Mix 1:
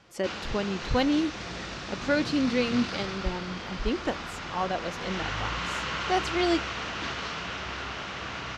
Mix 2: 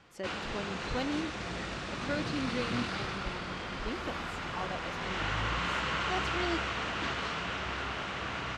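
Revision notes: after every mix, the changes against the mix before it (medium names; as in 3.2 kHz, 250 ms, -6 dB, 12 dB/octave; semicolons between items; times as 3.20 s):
speech -10.0 dB; background: remove resonant low-pass 6 kHz, resonance Q 1.8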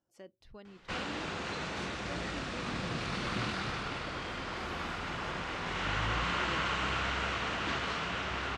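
speech -11.5 dB; background: entry +0.65 s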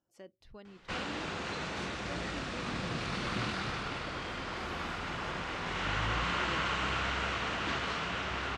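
no change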